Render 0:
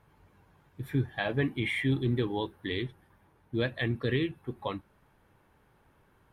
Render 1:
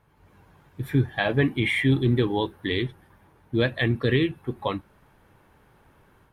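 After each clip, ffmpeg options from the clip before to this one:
-af "dynaudnorm=f=160:g=3:m=7dB"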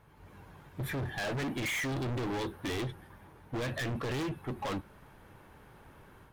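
-af "alimiter=limit=-17dB:level=0:latency=1:release=34,volume=35dB,asoftclip=hard,volume=-35dB,volume=2.5dB"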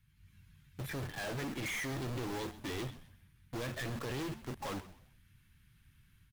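-filter_complex "[0:a]acrossover=split=190|1900[a][b][c];[b]acrusher=bits=6:mix=0:aa=0.000001[d];[a][d][c]amix=inputs=3:normalize=0,asplit=4[e][f][g][h];[f]adelay=129,afreqshift=-110,volume=-15dB[i];[g]adelay=258,afreqshift=-220,volume=-25.2dB[j];[h]adelay=387,afreqshift=-330,volume=-35.3dB[k];[e][i][j][k]amix=inputs=4:normalize=0,volume=-5dB"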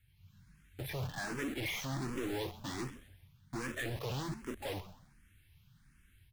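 -filter_complex "[0:a]asplit=2[a][b];[b]afreqshift=1.3[c];[a][c]amix=inputs=2:normalize=1,volume=3.5dB"

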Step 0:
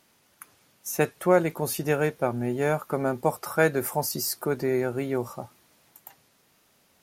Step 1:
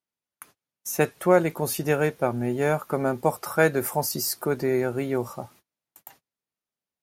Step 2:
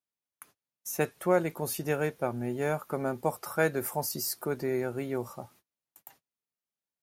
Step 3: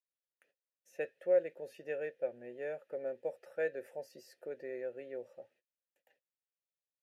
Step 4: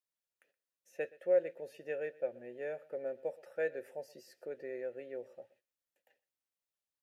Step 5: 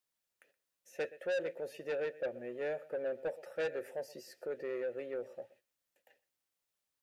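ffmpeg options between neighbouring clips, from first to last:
-af "agate=range=-31dB:threshold=-53dB:ratio=16:detection=peak,volume=1.5dB"
-af "highshelf=f=11k:g=3,volume=-6.5dB"
-filter_complex "[0:a]asplit=3[a][b][c];[a]bandpass=f=530:t=q:w=8,volume=0dB[d];[b]bandpass=f=1.84k:t=q:w=8,volume=-6dB[e];[c]bandpass=f=2.48k:t=q:w=8,volume=-9dB[f];[d][e][f]amix=inputs=3:normalize=0"
-af "aecho=1:1:122:0.0841"
-af "asoftclip=type=tanh:threshold=-36.5dB,volume=5.5dB"

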